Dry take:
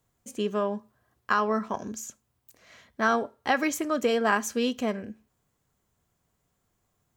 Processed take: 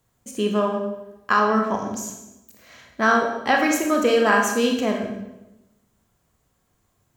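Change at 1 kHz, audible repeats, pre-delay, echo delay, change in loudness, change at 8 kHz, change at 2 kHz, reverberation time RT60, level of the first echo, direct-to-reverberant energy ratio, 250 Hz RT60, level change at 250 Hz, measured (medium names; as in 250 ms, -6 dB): +6.5 dB, no echo, 24 ms, no echo, +6.5 dB, +6.0 dB, +7.5 dB, 1.0 s, no echo, 2.0 dB, 1.2 s, +7.0 dB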